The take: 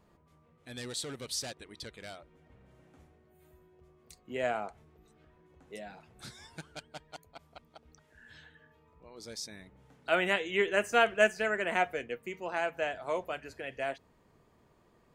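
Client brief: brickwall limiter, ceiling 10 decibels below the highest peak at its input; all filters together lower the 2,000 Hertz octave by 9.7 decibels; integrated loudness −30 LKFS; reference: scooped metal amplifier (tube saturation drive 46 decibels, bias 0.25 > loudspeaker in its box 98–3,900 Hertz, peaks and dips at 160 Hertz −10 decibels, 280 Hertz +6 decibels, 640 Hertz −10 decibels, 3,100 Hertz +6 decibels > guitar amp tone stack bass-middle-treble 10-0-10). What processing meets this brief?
parametric band 2,000 Hz −7 dB
brickwall limiter −23.5 dBFS
tube saturation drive 46 dB, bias 0.25
loudspeaker in its box 98–3,900 Hz, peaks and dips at 160 Hz −10 dB, 280 Hz +6 dB, 640 Hz −10 dB, 3,100 Hz +6 dB
guitar amp tone stack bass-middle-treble 10-0-10
level +28.5 dB

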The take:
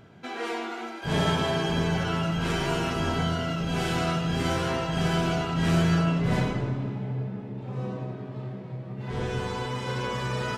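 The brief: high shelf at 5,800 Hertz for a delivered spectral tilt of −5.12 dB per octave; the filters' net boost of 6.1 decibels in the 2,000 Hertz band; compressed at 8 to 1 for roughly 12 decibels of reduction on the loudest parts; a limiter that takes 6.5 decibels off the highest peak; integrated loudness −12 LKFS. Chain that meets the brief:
parametric band 2,000 Hz +7 dB
high-shelf EQ 5,800 Hz +8 dB
downward compressor 8 to 1, threshold −31 dBFS
level +24 dB
brickwall limiter −3 dBFS

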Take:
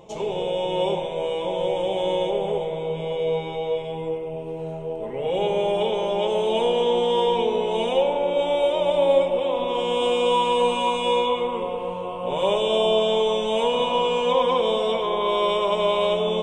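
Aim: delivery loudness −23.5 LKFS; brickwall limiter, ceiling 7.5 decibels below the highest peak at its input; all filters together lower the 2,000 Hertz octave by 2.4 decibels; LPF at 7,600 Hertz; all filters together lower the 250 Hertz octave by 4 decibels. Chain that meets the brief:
low-pass filter 7,600 Hz
parametric band 250 Hz −6 dB
parametric band 2,000 Hz −3 dB
level +2.5 dB
brickwall limiter −14.5 dBFS

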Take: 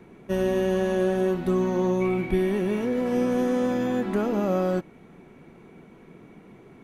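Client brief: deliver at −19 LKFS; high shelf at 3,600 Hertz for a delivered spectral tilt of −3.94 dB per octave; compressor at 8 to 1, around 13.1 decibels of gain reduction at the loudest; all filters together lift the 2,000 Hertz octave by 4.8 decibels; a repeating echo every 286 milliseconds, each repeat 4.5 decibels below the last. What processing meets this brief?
parametric band 2,000 Hz +8 dB
high-shelf EQ 3,600 Hz −8 dB
downward compressor 8 to 1, threshold −33 dBFS
repeating echo 286 ms, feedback 60%, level −4.5 dB
level +17 dB

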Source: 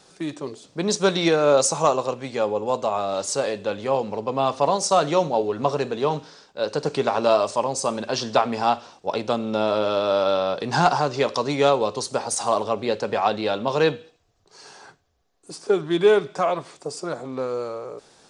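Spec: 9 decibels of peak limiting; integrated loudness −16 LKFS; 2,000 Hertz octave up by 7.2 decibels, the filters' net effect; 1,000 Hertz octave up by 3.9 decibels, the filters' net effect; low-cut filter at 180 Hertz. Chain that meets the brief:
high-pass filter 180 Hz
parametric band 1,000 Hz +3 dB
parametric band 2,000 Hz +9 dB
level +6.5 dB
brickwall limiter −3.5 dBFS

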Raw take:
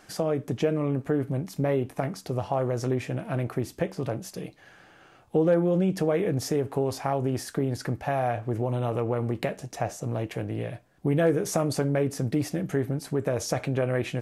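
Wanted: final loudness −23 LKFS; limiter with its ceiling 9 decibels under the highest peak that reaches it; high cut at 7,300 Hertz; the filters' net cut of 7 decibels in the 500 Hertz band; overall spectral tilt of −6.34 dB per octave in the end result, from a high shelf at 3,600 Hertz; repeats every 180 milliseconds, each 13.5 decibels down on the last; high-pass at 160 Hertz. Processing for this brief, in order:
high-pass filter 160 Hz
low-pass filter 7,300 Hz
parametric band 500 Hz −8.5 dB
high-shelf EQ 3,600 Hz −4 dB
brickwall limiter −23 dBFS
repeating echo 180 ms, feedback 21%, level −13.5 dB
level +11.5 dB

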